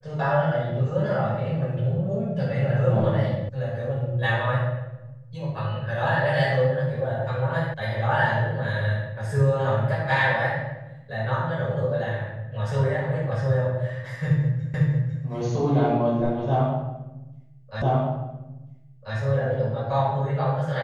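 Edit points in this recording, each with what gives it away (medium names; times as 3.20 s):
3.49 s: sound stops dead
7.74 s: sound stops dead
14.74 s: repeat of the last 0.5 s
17.82 s: repeat of the last 1.34 s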